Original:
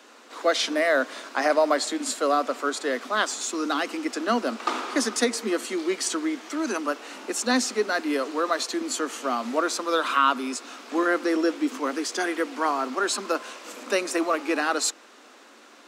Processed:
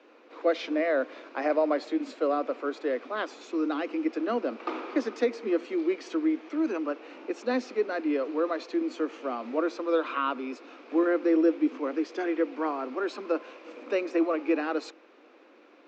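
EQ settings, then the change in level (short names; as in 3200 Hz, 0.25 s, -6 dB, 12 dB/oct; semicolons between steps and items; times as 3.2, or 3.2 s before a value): air absorption 150 m; speaker cabinet 300–6800 Hz, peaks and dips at 320 Hz +8 dB, 500 Hz +6 dB, 2400 Hz +8 dB; tilt shelf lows +4.5 dB, about 870 Hz; -7.0 dB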